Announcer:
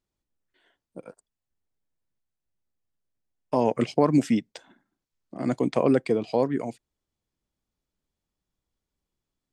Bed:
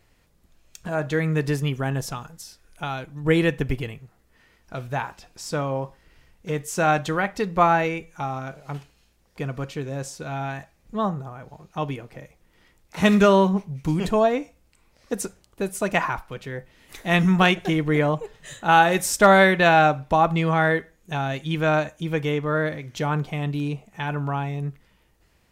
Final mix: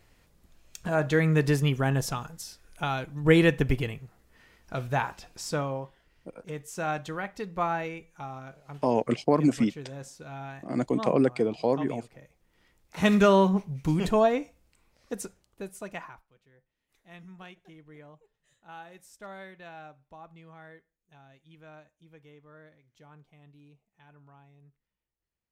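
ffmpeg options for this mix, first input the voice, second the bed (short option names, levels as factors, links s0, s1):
-filter_complex "[0:a]adelay=5300,volume=0.794[s0];[1:a]volume=2.51,afade=t=out:st=5.33:d=0.55:silence=0.298538,afade=t=in:st=12.22:d=1.33:silence=0.398107,afade=t=out:st=14.17:d=2.12:silence=0.0446684[s1];[s0][s1]amix=inputs=2:normalize=0"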